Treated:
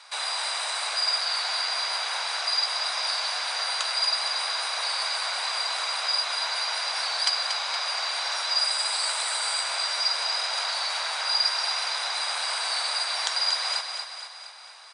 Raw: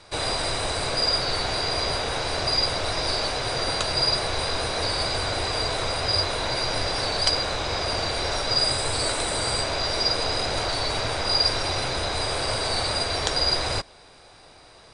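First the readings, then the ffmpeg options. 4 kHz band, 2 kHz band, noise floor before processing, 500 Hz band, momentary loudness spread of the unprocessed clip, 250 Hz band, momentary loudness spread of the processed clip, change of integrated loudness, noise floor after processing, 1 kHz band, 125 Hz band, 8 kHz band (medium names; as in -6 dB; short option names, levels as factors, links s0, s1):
-0.5 dB, 0.0 dB, -50 dBFS, -13.0 dB, 4 LU, under -30 dB, 4 LU, -1.5 dB, -41 dBFS, -2.5 dB, under -40 dB, 0.0 dB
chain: -filter_complex "[0:a]highpass=f=850:w=0.5412,highpass=f=850:w=1.3066,asplit=2[s0][s1];[s1]acompressor=threshold=0.0141:ratio=6,volume=1[s2];[s0][s2]amix=inputs=2:normalize=0,aecho=1:1:234|468|702|936|1170|1404|1638:0.473|0.26|0.143|0.0787|0.0433|0.0238|0.0131,volume=0.668"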